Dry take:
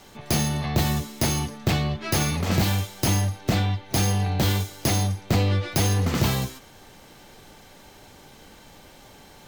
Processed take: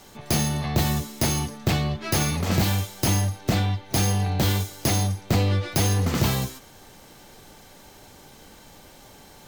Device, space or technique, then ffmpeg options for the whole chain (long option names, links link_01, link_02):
exciter from parts: -filter_complex "[0:a]asplit=2[link_01][link_02];[link_02]highpass=2300,asoftclip=type=tanh:threshold=-37dB,highpass=frequency=4800:poles=1,volume=-5dB[link_03];[link_01][link_03]amix=inputs=2:normalize=0"